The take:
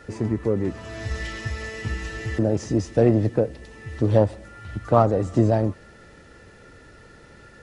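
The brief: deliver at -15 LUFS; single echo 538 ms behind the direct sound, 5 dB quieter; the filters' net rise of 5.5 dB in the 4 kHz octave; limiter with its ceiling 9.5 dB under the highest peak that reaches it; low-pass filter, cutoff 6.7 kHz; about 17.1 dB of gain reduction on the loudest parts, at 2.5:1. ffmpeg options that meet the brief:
-af "lowpass=6700,equalizer=f=4000:t=o:g=8,acompressor=threshold=0.0112:ratio=2.5,alimiter=level_in=1.78:limit=0.0631:level=0:latency=1,volume=0.562,aecho=1:1:538:0.562,volume=16.8"

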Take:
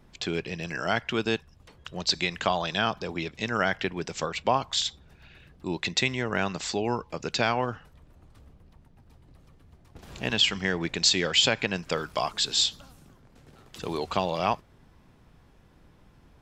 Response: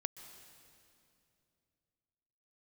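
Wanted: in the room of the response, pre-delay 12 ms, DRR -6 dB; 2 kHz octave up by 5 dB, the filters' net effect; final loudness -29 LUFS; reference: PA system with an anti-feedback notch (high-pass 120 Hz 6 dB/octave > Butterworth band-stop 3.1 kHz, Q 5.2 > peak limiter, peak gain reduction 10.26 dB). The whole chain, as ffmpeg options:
-filter_complex "[0:a]equalizer=f=2000:t=o:g=6.5,asplit=2[s0][s1];[1:a]atrim=start_sample=2205,adelay=12[s2];[s1][s2]afir=irnorm=-1:irlink=0,volume=2.37[s3];[s0][s3]amix=inputs=2:normalize=0,highpass=f=120:p=1,asuperstop=centerf=3100:order=8:qfactor=5.2,volume=0.531,alimiter=limit=0.141:level=0:latency=1"

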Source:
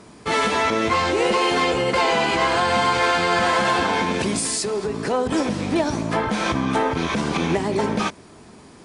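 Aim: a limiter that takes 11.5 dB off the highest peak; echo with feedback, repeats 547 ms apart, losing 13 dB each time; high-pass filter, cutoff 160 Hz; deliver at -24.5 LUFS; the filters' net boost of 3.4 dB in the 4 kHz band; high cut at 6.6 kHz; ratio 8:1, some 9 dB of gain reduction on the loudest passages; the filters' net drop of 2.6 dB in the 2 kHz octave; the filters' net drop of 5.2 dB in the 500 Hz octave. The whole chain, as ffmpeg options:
-af "highpass=160,lowpass=6600,equalizer=f=500:t=o:g=-6.5,equalizer=f=2000:t=o:g=-4.5,equalizer=f=4000:t=o:g=6.5,acompressor=threshold=0.0447:ratio=8,alimiter=level_in=1.58:limit=0.0631:level=0:latency=1,volume=0.631,aecho=1:1:547|1094|1641:0.224|0.0493|0.0108,volume=3.76"

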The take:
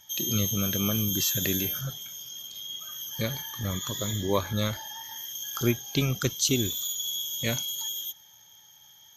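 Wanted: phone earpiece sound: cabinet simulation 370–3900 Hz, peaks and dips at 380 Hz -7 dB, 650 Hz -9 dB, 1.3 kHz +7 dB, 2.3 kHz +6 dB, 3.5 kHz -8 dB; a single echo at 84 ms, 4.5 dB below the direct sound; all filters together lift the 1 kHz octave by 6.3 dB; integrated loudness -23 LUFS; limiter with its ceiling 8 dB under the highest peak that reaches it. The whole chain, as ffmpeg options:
-af "equalizer=f=1000:t=o:g=4.5,alimiter=limit=0.141:level=0:latency=1,highpass=370,equalizer=f=380:t=q:w=4:g=-7,equalizer=f=650:t=q:w=4:g=-9,equalizer=f=1300:t=q:w=4:g=7,equalizer=f=2300:t=q:w=4:g=6,equalizer=f=3500:t=q:w=4:g=-8,lowpass=f=3900:w=0.5412,lowpass=f=3900:w=1.3066,aecho=1:1:84:0.596,volume=4.22"

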